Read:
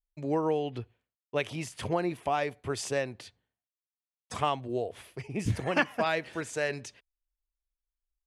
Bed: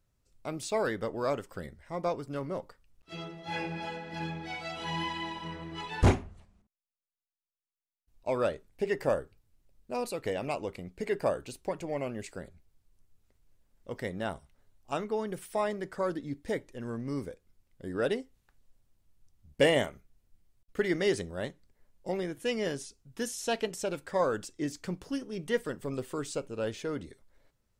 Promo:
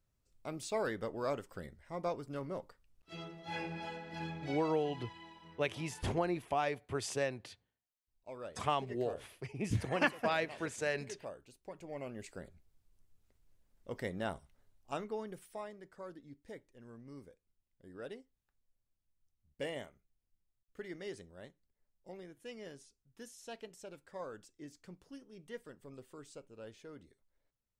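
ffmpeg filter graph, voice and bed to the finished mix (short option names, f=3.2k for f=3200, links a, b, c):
-filter_complex "[0:a]adelay=4250,volume=-4.5dB[a];[1:a]volume=8dB,afade=t=out:st=4.5:d=0.31:silence=0.266073,afade=t=in:st=11.59:d=1.1:silence=0.211349,afade=t=out:st=14.54:d=1.17:silence=0.223872[b];[a][b]amix=inputs=2:normalize=0"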